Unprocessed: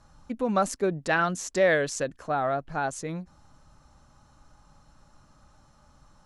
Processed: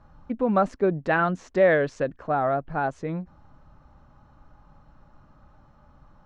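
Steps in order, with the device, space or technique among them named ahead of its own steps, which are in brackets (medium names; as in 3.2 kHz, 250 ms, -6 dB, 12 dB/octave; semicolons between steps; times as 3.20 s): phone in a pocket (low-pass 3.1 kHz 12 dB/octave; treble shelf 2.1 kHz -8.5 dB); trim +4 dB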